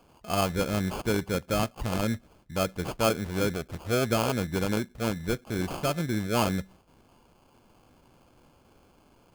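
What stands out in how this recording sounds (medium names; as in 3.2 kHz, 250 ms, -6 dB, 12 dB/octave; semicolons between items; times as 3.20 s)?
aliases and images of a low sample rate 1.9 kHz, jitter 0%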